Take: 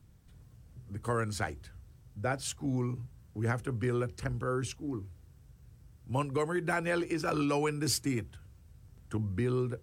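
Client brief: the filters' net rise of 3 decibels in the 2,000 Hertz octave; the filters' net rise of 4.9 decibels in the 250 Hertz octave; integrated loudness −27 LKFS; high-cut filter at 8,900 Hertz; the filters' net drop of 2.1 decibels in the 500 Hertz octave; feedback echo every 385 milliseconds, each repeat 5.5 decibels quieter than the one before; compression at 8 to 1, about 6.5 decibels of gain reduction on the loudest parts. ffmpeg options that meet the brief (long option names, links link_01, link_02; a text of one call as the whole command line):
ffmpeg -i in.wav -af "lowpass=8900,equalizer=frequency=250:width_type=o:gain=8.5,equalizer=frequency=500:width_type=o:gain=-7,equalizer=frequency=2000:width_type=o:gain=4.5,acompressor=threshold=-29dB:ratio=8,aecho=1:1:385|770|1155|1540|1925|2310|2695:0.531|0.281|0.149|0.079|0.0419|0.0222|0.0118,volume=7.5dB" out.wav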